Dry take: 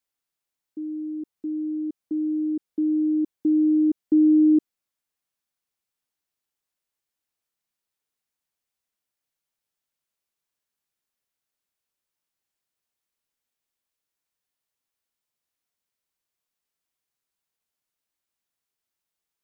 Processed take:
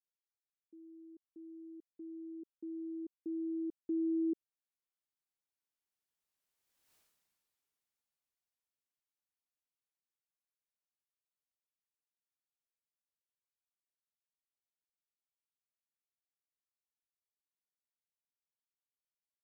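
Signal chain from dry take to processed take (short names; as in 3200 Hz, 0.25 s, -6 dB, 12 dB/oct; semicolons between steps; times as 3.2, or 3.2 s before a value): Doppler pass-by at 6.95, 19 m/s, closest 1.7 m; gain +13.5 dB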